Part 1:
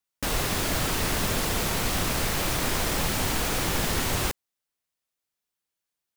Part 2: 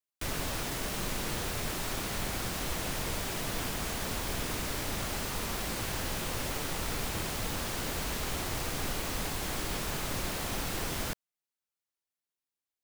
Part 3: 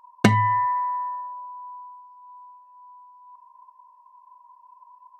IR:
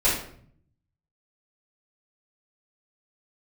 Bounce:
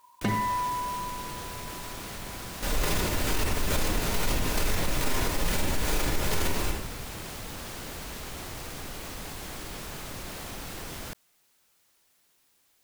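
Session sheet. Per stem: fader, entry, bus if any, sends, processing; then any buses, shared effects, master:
+1.0 dB, 2.40 s, send -11.5 dB, chopper 2.3 Hz, depth 65%, duty 40%
-6.0 dB, 0.00 s, no send, fast leveller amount 50%
-7.0 dB, 0.00 s, send -23.5 dB, dry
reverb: on, RT60 0.60 s, pre-delay 3 ms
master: limiter -17 dBFS, peak gain reduction 13 dB

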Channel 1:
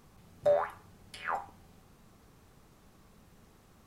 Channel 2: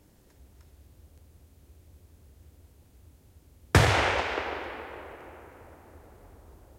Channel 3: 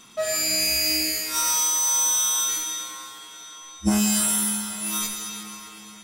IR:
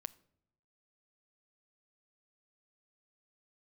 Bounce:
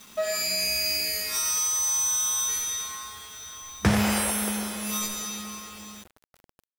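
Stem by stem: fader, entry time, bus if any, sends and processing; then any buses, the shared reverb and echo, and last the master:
off
-4.5 dB, 0.10 s, no send, dry
-2.5 dB, 0.00 s, no send, notch 7900 Hz, Q 9.6; comb 4.8 ms, depth 74%; compressor 2:1, threshold -24 dBFS, peak gain reduction 6.5 dB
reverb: off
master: bit-crush 8-bit

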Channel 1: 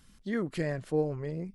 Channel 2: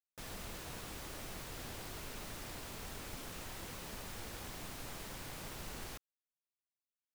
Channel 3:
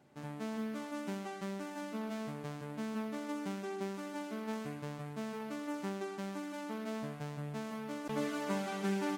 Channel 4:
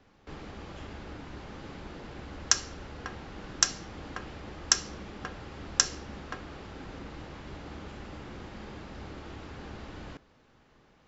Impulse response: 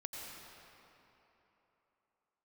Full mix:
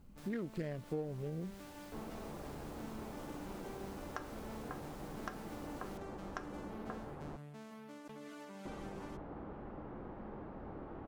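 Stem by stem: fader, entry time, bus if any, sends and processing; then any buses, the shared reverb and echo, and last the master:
+1.5 dB, 0.00 s, no send, Wiener smoothing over 25 samples
-13.0 dB, 0.00 s, no send, fast leveller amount 50%
-10.0 dB, 0.00 s, no send, limiter -32.5 dBFS, peak gain reduction 8.5 dB
-1.5 dB, 1.65 s, muted 7.37–8.65, no send, Chebyshev low-pass 910 Hz, order 2; bell 74 Hz -7.5 dB 1.3 oct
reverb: off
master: compressor 4:1, threshold -38 dBFS, peak gain reduction 13.5 dB

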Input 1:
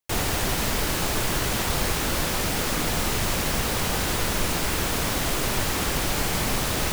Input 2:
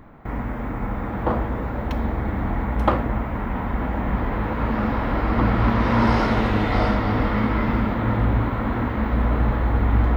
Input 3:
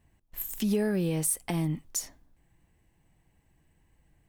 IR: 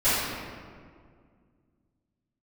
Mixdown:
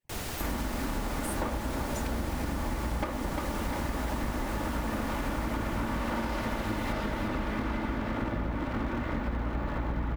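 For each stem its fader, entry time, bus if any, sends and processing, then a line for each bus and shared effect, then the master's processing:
-11.5 dB, 0.00 s, no send, echo send -6 dB, dry
+1.0 dB, 0.15 s, no send, echo send -10 dB, minimum comb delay 3.4 ms
-7.5 dB, 0.00 s, no send, no echo send, median-filter separation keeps percussive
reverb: off
echo: feedback echo 0.35 s, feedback 58%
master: compressor 10:1, threshold -28 dBFS, peak gain reduction 15.5 dB

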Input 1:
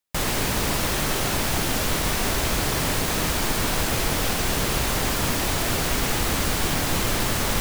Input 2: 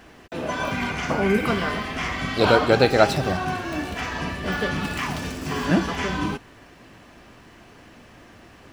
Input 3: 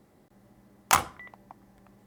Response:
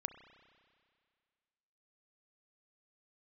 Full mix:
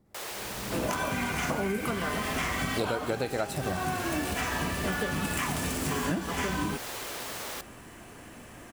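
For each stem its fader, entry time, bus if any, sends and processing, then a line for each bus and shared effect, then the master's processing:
-12.0 dB, 0.00 s, no send, steep high-pass 360 Hz
+0.5 dB, 0.40 s, no send, resonant high shelf 6600 Hz +9 dB, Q 1.5
-10.5 dB, 0.00 s, no send, low shelf 170 Hz +11.5 dB; backwards sustainer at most 44 dB/s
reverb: off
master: compressor 16:1, threshold -26 dBFS, peak gain reduction 17.5 dB

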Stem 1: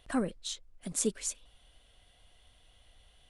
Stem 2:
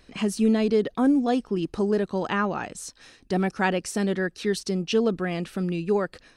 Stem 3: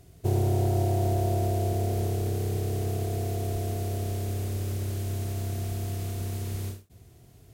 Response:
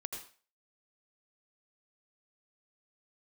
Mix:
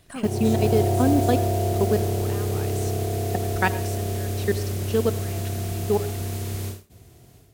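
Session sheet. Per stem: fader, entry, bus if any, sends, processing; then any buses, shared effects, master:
-4.0 dB, 0.00 s, no send, de-esser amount 90%; bell 13000 Hz +12 dB 1.1 oct
+1.5 dB, 0.00 s, send -8 dB, level quantiser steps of 22 dB
-4.0 dB, 0.00 s, send -16 dB, AGC gain up to 9 dB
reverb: on, RT60 0.40 s, pre-delay 76 ms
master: low shelf 160 Hz -4.5 dB; modulation noise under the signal 27 dB

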